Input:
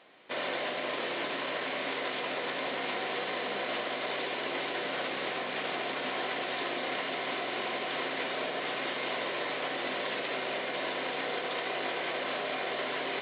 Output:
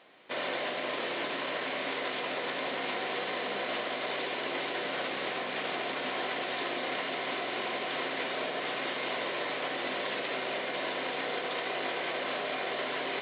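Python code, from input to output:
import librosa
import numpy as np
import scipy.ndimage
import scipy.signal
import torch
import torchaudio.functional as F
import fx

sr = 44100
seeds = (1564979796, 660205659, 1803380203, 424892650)

y = x + fx.echo_single(x, sr, ms=181, db=-23.5, dry=0)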